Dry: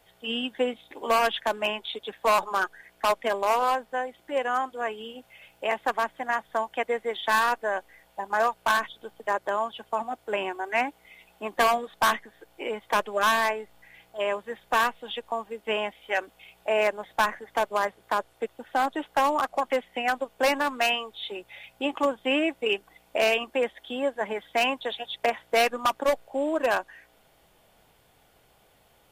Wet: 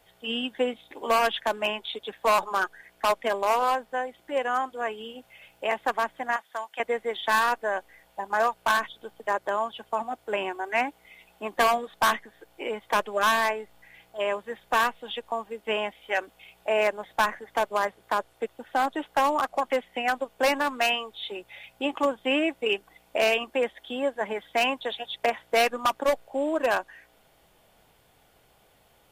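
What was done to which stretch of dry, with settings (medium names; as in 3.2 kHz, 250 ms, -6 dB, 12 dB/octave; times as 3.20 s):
6.36–6.80 s: high-pass 1.5 kHz 6 dB/octave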